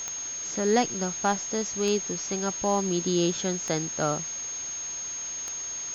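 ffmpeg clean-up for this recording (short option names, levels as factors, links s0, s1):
-af "adeclick=t=4,bandreject=f=6500:w=30,afftdn=nr=30:nf=-35"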